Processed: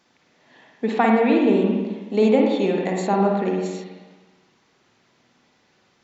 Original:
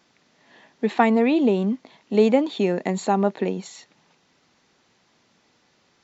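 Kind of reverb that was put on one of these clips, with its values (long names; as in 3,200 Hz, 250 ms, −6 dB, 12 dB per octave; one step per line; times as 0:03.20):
spring reverb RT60 1.3 s, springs 46/54 ms, chirp 60 ms, DRR −0.5 dB
level −1.5 dB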